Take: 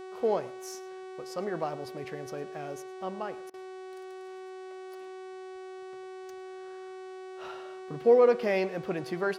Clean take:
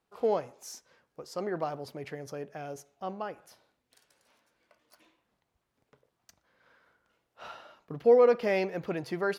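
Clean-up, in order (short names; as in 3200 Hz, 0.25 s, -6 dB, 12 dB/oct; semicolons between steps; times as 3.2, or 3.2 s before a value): de-hum 375.1 Hz, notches 26; interpolate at 3.5, 37 ms; inverse comb 0.107 s -20 dB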